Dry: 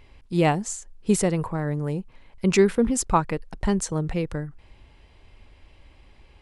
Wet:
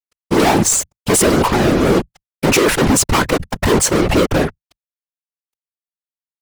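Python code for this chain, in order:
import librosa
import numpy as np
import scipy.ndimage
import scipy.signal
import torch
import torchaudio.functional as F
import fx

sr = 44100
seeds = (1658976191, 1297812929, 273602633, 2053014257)

y = fx.low_shelf_res(x, sr, hz=240.0, db=-6.5, q=1.5)
y = fx.fuzz(y, sr, gain_db=42.0, gate_db=-44.0)
y = fx.whisperise(y, sr, seeds[0])
y = F.gain(torch.from_numpy(y), 1.5).numpy()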